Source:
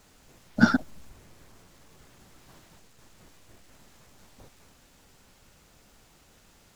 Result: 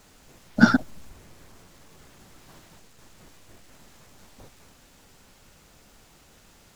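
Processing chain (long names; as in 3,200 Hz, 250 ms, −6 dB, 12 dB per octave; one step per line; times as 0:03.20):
mains-hum notches 60/120 Hz
level +3.5 dB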